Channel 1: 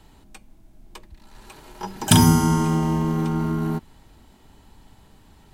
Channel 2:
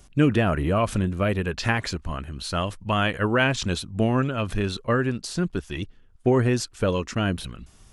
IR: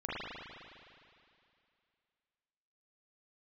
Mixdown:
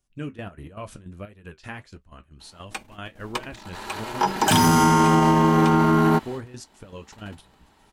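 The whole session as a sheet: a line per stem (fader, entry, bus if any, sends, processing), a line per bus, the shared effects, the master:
+1.0 dB, 2.40 s, no send, gate -46 dBFS, range -15 dB; overdrive pedal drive 22 dB, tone 2 kHz, clips at -1.5 dBFS
-9.5 dB, 0.00 s, no send, trance gate ".xx.x.x.xx.xx..x" 156 bpm -12 dB; flange 1.5 Hz, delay 8.1 ms, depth 5.2 ms, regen -53%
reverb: none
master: treble shelf 5.4 kHz +4.5 dB; peak limiter -10 dBFS, peak gain reduction 7.5 dB

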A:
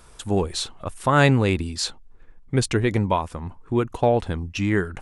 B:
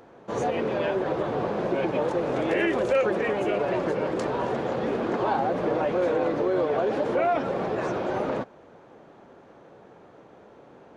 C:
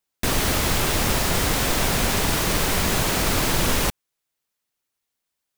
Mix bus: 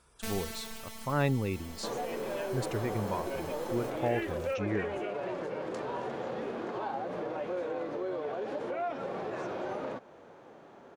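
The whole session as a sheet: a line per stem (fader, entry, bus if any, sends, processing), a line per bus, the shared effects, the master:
-10.0 dB, 0.00 s, no send, no echo send, high-pass 71 Hz 6 dB/octave; spectral gate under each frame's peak -25 dB strong
+1.0 dB, 1.55 s, no send, no echo send, treble shelf 9.9 kHz +5.5 dB; compression, threshold -31 dBFS, peak gain reduction 12 dB; bass shelf 250 Hz -5.5 dB
-8.5 dB, 0.00 s, no send, echo send -21 dB, reverb removal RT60 0.71 s; robot voice 223 Hz; auto duck -15 dB, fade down 1.25 s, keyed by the first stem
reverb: none
echo: delay 643 ms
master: harmonic-percussive split percussive -6 dB

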